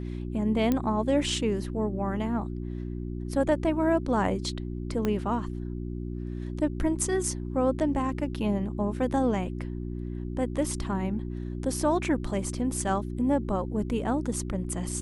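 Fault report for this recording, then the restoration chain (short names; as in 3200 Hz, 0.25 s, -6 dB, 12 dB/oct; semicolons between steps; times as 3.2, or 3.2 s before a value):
hum 60 Hz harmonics 6 -34 dBFS
0.72 pop -13 dBFS
5.05 pop -15 dBFS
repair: de-click; de-hum 60 Hz, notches 6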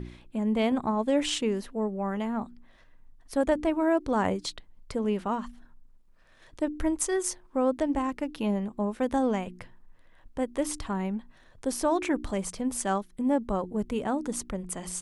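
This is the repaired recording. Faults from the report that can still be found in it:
5.05 pop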